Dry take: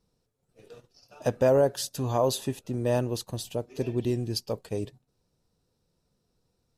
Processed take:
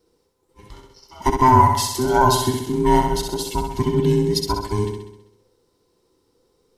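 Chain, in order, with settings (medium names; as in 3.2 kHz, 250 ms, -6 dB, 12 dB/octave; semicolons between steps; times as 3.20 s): every band turned upside down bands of 500 Hz; flutter echo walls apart 11.2 m, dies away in 0.8 s; trim +8 dB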